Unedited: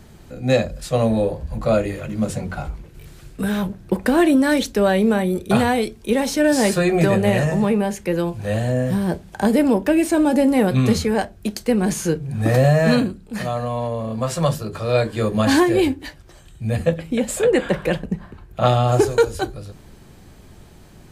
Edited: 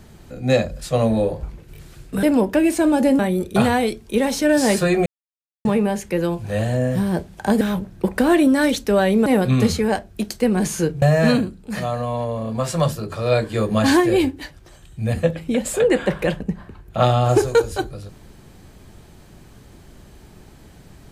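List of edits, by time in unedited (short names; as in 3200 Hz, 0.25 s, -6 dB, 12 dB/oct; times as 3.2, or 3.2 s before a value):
1.43–2.69 cut
3.49–5.14 swap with 9.56–10.52
7.01–7.6 mute
12.28–12.65 cut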